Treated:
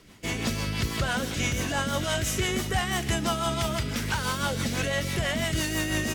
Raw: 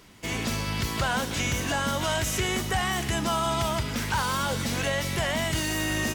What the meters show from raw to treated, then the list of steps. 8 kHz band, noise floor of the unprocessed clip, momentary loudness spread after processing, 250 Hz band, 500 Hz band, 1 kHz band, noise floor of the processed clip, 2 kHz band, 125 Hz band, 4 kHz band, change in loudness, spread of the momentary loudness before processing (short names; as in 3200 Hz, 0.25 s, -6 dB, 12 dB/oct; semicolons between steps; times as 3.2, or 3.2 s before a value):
-0.5 dB, -32 dBFS, 2 LU, +0.5 dB, -0.5 dB, -3.0 dB, -33 dBFS, -0.5 dB, +0.5 dB, -0.5 dB, -0.5 dB, 3 LU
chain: dynamic EQ 950 Hz, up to -5 dB, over -44 dBFS, Q 5.8; rotary speaker horn 6 Hz; gain +2 dB